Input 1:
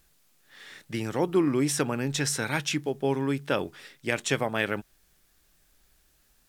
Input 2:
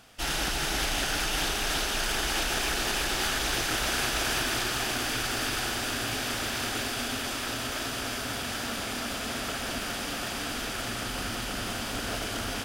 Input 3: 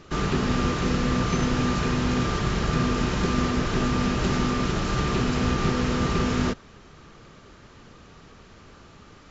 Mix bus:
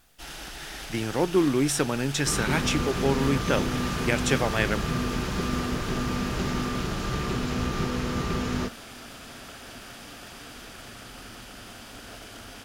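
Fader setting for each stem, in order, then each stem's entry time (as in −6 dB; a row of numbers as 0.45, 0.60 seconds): +1.5, −10.5, −4.5 decibels; 0.00, 0.00, 2.15 seconds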